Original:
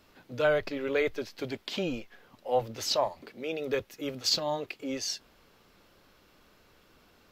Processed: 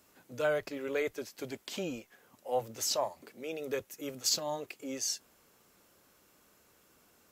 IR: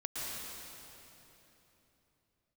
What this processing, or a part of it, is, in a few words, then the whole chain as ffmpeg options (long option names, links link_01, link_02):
budget condenser microphone: -af "highpass=frequency=110:poles=1,highshelf=frequency=5700:width_type=q:width=1.5:gain=9.5,volume=-4.5dB"